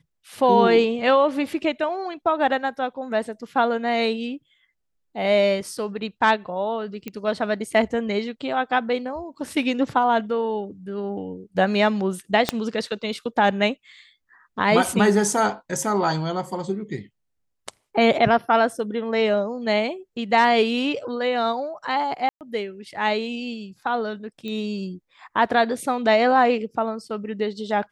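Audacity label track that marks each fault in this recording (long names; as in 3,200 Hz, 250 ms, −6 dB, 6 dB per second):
7.080000	7.080000	click −17 dBFS
12.490000	12.490000	click −5 dBFS
22.290000	22.410000	drop-out 118 ms
24.480000	24.480000	click −21 dBFS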